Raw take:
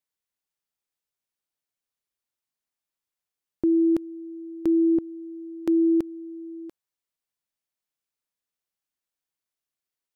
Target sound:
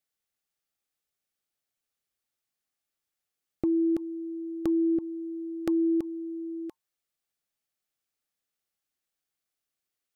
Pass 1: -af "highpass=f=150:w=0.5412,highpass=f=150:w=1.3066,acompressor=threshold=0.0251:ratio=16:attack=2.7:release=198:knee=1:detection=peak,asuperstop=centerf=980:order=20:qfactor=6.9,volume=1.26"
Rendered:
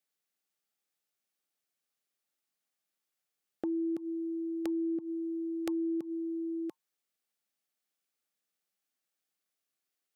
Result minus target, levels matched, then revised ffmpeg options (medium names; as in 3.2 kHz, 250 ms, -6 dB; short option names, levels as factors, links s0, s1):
125 Hz band -9.5 dB; compression: peak gain reduction +7.5 dB
-af "acompressor=threshold=0.0631:ratio=16:attack=2.7:release=198:knee=1:detection=peak,asuperstop=centerf=980:order=20:qfactor=6.9,volume=1.26"